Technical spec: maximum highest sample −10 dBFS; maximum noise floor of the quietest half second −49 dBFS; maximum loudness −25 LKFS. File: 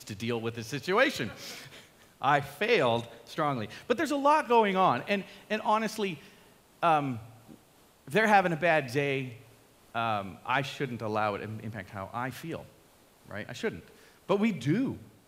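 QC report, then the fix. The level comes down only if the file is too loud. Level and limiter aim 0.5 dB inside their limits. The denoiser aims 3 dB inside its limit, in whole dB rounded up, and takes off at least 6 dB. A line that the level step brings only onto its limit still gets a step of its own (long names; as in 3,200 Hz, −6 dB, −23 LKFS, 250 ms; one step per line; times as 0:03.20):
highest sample −8.5 dBFS: out of spec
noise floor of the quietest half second −60 dBFS: in spec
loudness −29.0 LKFS: in spec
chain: brickwall limiter −10.5 dBFS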